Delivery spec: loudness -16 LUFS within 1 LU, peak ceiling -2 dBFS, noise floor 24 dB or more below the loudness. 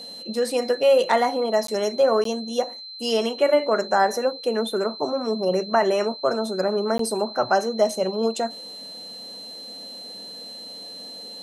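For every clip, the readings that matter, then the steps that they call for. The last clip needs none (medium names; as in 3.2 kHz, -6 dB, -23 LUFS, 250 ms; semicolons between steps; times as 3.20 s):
dropouts 3; longest dropout 13 ms; steady tone 4.1 kHz; tone level -36 dBFS; loudness -22.5 LUFS; peak level -7.0 dBFS; loudness target -16.0 LUFS
-> interpolate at 1.67/2.24/6.98 s, 13 ms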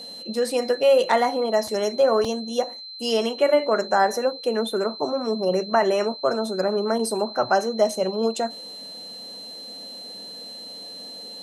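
dropouts 0; steady tone 4.1 kHz; tone level -36 dBFS
-> band-stop 4.1 kHz, Q 30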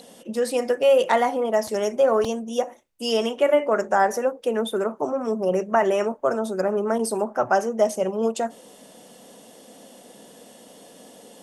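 steady tone not found; loudness -23.0 LUFS; peak level -7.0 dBFS; loudness target -16.0 LUFS
-> trim +7 dB; peak limiter -2 dBFS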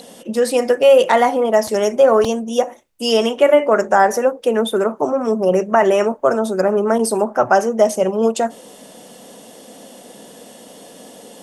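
loudness -16.0 LUFS; peak level -2.0 dBFS; noise floor -42 dBFS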